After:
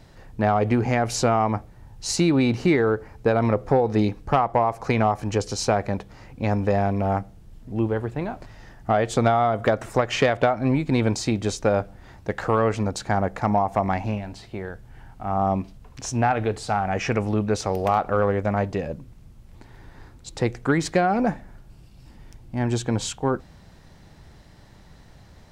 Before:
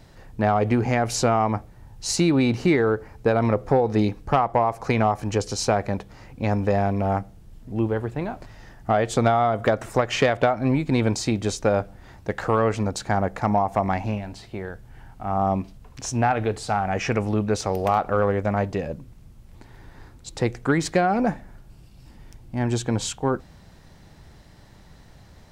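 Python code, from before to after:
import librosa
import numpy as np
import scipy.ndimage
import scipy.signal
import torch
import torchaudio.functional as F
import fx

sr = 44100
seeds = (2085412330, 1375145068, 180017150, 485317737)

y = fx.high_shelf(x, sr, hz=9600.0, db=-3.5)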